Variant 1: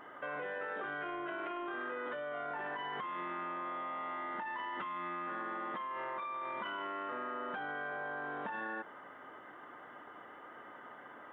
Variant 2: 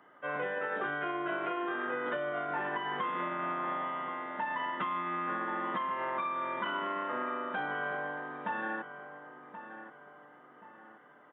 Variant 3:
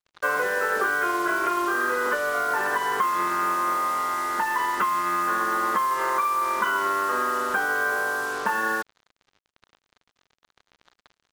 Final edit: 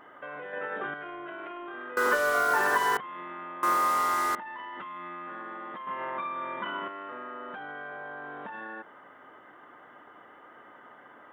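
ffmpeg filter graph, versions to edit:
-filter_complex "[1:a]asplit=2[a][b];[2:a]asplit=2[c][d];[0:a]asplit=5[e][f][g][h][i];[e]atrim=end=0.532[j];[a]atrim=start=0.528:end=0.942[k];[f]atrim=start=0.938:end=1.972[l];[c]atrim=start=1.968:end=2.972[m];[g]atrim=start=2.968:end=3.632[n];[d]atrim=start=3.628:end=4.352[o];[h]atrim=start=4.348:end=5.872[p];[b]atrim=start=5.868:end=6.882[q];[i]atrim=start=6.878[r];[j][k]acrossfade=d=0.004:c1=hsin:c2=hsin[s];[s][l]acrossfade=d=0.004:c1=hsin:c2=hsin[t];[t][m]acrossfade=d=0.004:c1=hsin:c2=hsin[u];[u][n]acrossfade=d=0.004:c1=hsin:c2=hsin[v];[v][o]acrossfade=d=0.004:c1=hsin:c2=hsin[w];[w][p]acrossfade=d=0.004:c1=hsin:c2=hsin[x];[x][q]acrossfade=d=0.004:c1=hsin:c2=hsin[y];[y][r]acrossfade=d=0.004:c1=hsin:c2=hsin"

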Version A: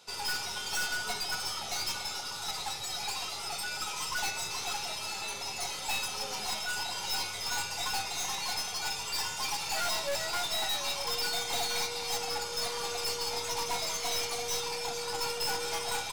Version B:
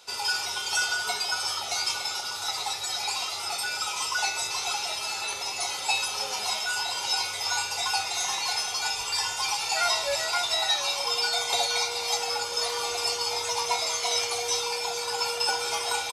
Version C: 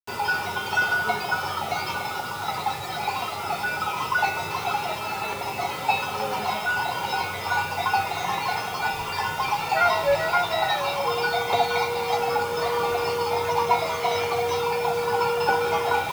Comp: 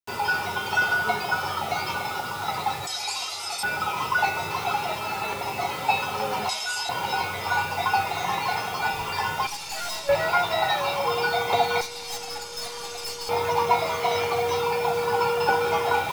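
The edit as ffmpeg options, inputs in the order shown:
-filter_complex "[1:a]asplit=2[a][b];[0:a]asplit=2[c][d];[2:a]asplit=5[e][f][g][h][i];[e]atrim=end=2.872[j];[a]atrim=start=2.868:end=3.632[k];[f]atrim=start=3.628:end=6.492[l];[b]atrim=start=6.488:end=6.892[m];[g]atrim=start=6.888:end=9.472[n];[c]atrim=start=9.468:end=10.092[o];[h]atrim=start=10.088:end=11.812[p];[d]atrim=start=11.808:end=13.292[q];[i]atrim=start=13.288[r];[j][k]acrossfade=d=0.004:c1=hsin:c2=hsin[s];[s][l]acrossfade=d=0.004:c1=hsin:c2=hsin[t];[t][m]acrossfade=d=0.004:c1=hsin:c2=hsin[u];[u][n]acrossfade=d=0.004:c1=hsin:c2=hsin[v];[v][o]acrossfade=d=0.004:c1=hsin:c2=hsin[w];[w][p]acrossfade=d=0.004:c1=hsin:c2=hsin[x];[x][q]acrossfade=d=0.004:c1=hsin:c2=hsin[y];[y][r]acrossfade=d=0.004:c1=hsin:c2=hsin"

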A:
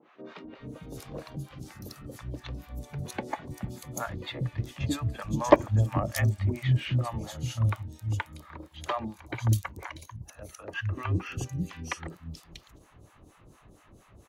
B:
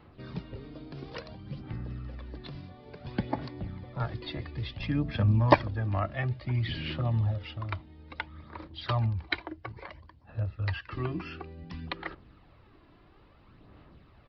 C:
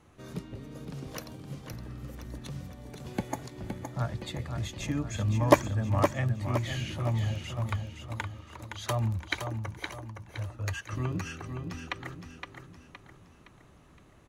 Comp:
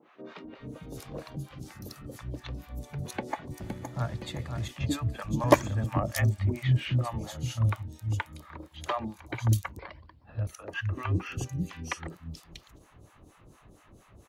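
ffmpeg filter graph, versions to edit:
-filter_complex "[2:a]asplit=2[a][b];[0:a]asplit=4[c][d][e][f];[c]atrim=end=3.602[g];[a]atrim=start=3.598:end=4.682[h];[d]atrim=start=4.678:end=5.442[i];[b]atrim=start=5.438:end=5.842[j];[e]atrim=start=5.838:end=9.792[k];[1:a]atrim=start=9.788:end=10.472[l];[f]atrim=start=10.468[m];[g][h]acrossfade=d=0.004:c1=hsin:c2=hsin[n];[n][i]acrossfade=d=0.004:c1=hsin:c2=hsin[o];[o][j]acrossfade=d=0.004:c1=hsin:c2=hsin[p];[p][k]acrossfade=d=0.004:c1=hsin:c2=hsin[q];[q][l]acrossfade=d=0.004:c1=hsin:c2=hsin[r];[r][m]acrossfade=d=0.004:c1=hsin:c2=hsin"

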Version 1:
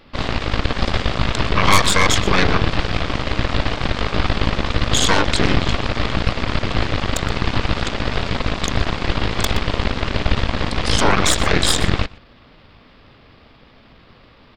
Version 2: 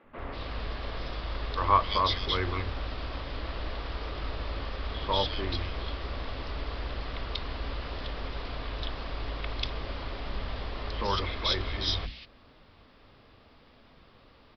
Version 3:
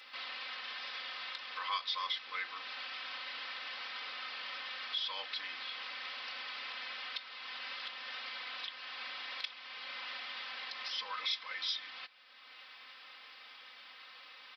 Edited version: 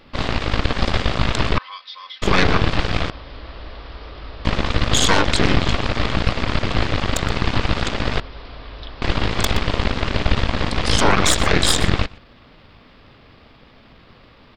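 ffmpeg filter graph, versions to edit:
-filter_complex "[1:a]asplit=2[a][b];[0:a]asplit=4[c][d][e][f];[c]atrim=end=1.582[g];[2:a]atrim=start=1.578:end=2.222[h];[d]atrim=start=2.218:end=3.102[i];[a]atrim=start=3.098:end=4.452[j];[e]atrim=start=4.448:end=8.202[k];[b]atrim=start=8.198:end=9.022[l];[f]atrim=start=9.018[m];[g][h]acrossfade=d=0.004:c1=hsin:c2=hsin[n];[n][i]acrossfade=d=0.004:c1=hsin:c2=hsin[o];[o][j]acrossfade=d=0.004:c1=hsin:c2=hsin[p];[p][k]acrossfade=d=0.004:c1=hsin:c2=hsin[q];[q][l]acrossfade=d=0.004:c1=hsin:c2=hsin[r];[r][m]acrossfade=d=0.004:c1=hsin:c2=hsin"

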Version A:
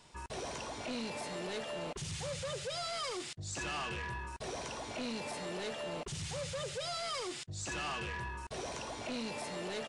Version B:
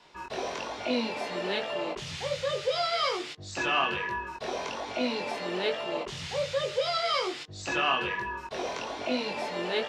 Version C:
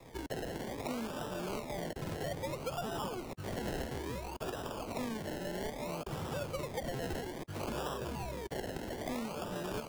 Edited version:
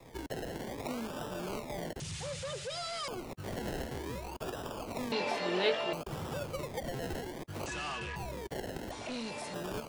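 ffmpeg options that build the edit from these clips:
-filter_complex "[0:a]asplit=3[a][b][c];[2:a]asplit=5[d][e][f][g][h];[d]atrim=end=2.002[i];[a]atrim=start=1.998:end=3.082[j];[e]atrim=start=3.078:end=5.122[k];[1:a]atrim=start=5.118:end=5.932[l];[f]atrim=start=5.928:end=7.662[m];[b]atrim=start=7.658:end=8.162[n];[g]atrim=start=8.158:end=8.912[o];[c]atrim=start=8.908:end=9.542[p];[h]atrim=start=9.538[q];[i][j]acrossfade=d=0.004:c1=hsin:c2=hsin[r];[r][k]acrossfade=d=0.004:c1=hsin:c2=hsin[s];[s][l]acrossfade=d=0.004:c1=hsin:c2=hsin[t];[t][m]acrossfade=d=0.004:c1=hsin:c2=hsin[u];[u][n]acrossfade=d=0.004:c1=hsin:c2=hsin[v];[v][o]acrossfade=d=0.004:c1=hsin:c2=hsin[w];[w][p]acrossfade=d=0.004:c1=hsin:c2=hsin[x];[x][q]acrossfade=d=0.004:c1=hsin:c2=hsin"

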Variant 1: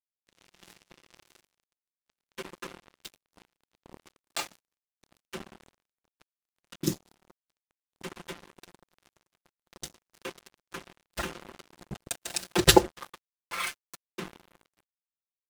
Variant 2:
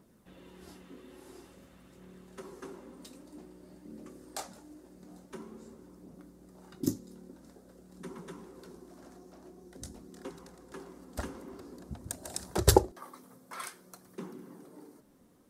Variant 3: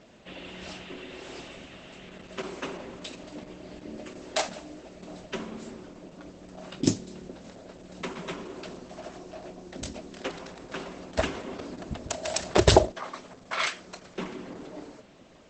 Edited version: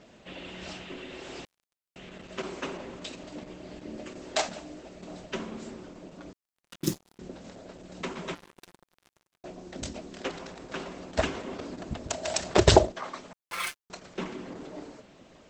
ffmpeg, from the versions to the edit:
-filter_complex "[0:a]asplit=4[a][b][c][d];[2:a]asplit=5[e][f][g][h][i];[e]atrim=end=1.452[j];[a]atrim=start=1.448:end=1.962[k];[f]atrim=start=1.958:end=6.332[l];[b]atrim=start=6.328:end=7.192[m];[g]atrim=start=7.188:end=8.352[n];[c]atrim=start=8.348:end=9.442[o];[h]atrim=start=9.438:end=13.332[p];[d]atrim=start=13.328:end=13.902[q];[i]atrim=start=13.898[r];[j][k]acrossfade=d=0.004:c1=hsin:c2=hsin[s];[s][l]acrossfade=d=0.004:c1=hsin:c2=hsin[t];[t][m]acrossfade=d=0.004:c1=hsin:c2=hsin[u];[u][n]acrossfade=d=0.004:c1=hsin:c2=hsin[v];[v][o]acrossfade=d=0.004:c1=hsin:c2=hsin[w];[w][p]acrossfade=d=0.004:c1=hsin:c2=hsin[x];[x][q]acrossfade=d=0.004:c1=hsin:c2=hsin[y];[y][r]acrossfade=d=0.004:c1=hsin:c2=hsin"

